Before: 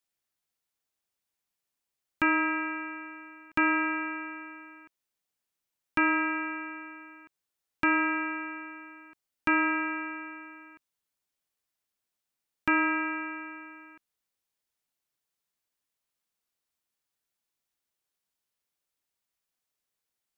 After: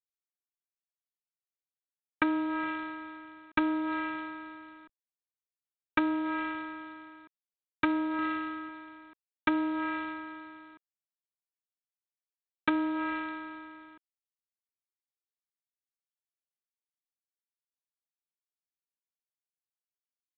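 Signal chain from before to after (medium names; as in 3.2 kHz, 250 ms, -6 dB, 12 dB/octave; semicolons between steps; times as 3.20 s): local Wiener filter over 15 samples; low-pass that closes with the level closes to 610 Hz, closed at -23.5 dBFS; high-pass 200 Hz 6 dB/octave; 8.18–8.69 s: comb 7 ms, depth 56%; trim +2.5 dB; G.726 24 kbps 8 kHz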